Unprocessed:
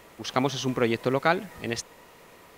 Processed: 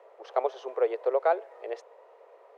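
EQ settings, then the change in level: steep high-pass 400 Hz 48 dB/octave; band-pass filter 530 Hz, Q 0.55; peaking EQ 580 Hz +12 dB 1.5 oct; -8.5 dB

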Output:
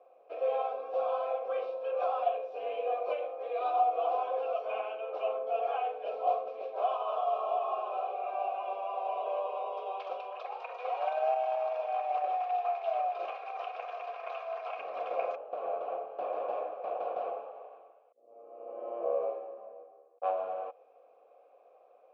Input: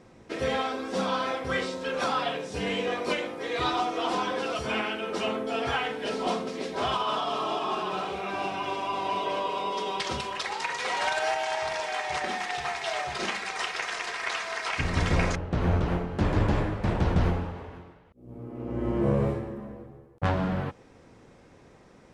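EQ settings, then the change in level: Gaussian low-pass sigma 1.6 samples; vowel filter a; resonant high-pass 510 Hz, resonance Q 5; -1.0 dB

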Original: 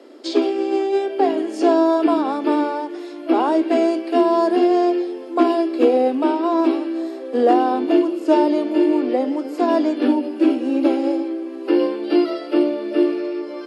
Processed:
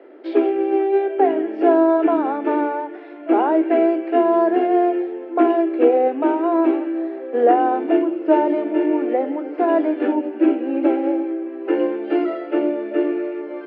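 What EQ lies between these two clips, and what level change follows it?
cabinet simulation 130–2200 Hz, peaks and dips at 250 Hz -9 dB, 550 Hz -3 dB, 1.1 kHz -8 dB; hum notches 50/100/150/200/250/300/350 Hz; +3.0 dB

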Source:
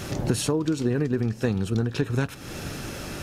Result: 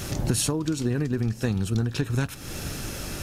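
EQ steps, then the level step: treble shelf 4.9 kHz +9 dB; dynamic bell 450 Hz, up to -4 dB, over -39 dBFS, Q 2.8; bass shelf 74 Hz +10 dB; -2.0 dB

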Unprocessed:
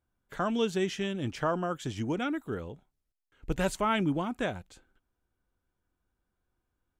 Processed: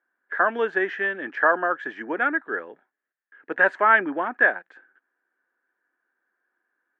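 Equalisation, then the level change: high-pass 300 Hz 24 dB/octave; dynamic bell 710 Hz, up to +5 dB, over -40 dBFS, Q 0.88; resonant low-pass 1.7 kHz, resonance Q 11; +2.0 dB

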